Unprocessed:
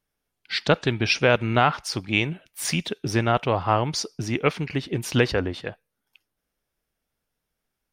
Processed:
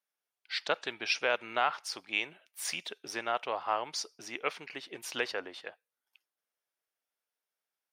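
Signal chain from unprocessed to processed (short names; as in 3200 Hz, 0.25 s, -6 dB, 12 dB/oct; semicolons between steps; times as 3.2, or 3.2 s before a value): HPF 590 Hz 12 dB/oct; gain -8 dB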